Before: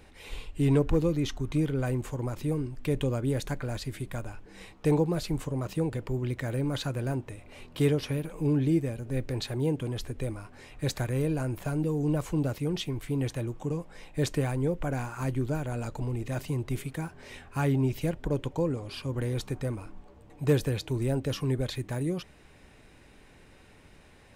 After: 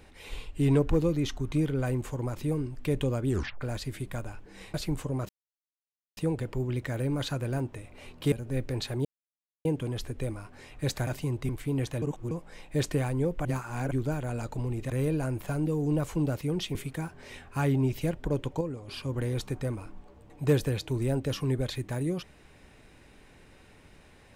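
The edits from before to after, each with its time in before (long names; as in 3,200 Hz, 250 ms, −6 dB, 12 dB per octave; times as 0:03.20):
0:03.28: tape stop 0.33 s
0:04.74–0:05.16: remove
0:05.71: splice in silence 0.88 s
0:07.86–0:08.92: remove
0:09.65: splice in silence 0.60 s
0:11.07–0:12.92: swap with 0:16.33–0:16.75
0:13.45–0:13.74: reverse
0:14.88–0:15.34: reverse
0:18.61–0:18.88: clip gain −6 dB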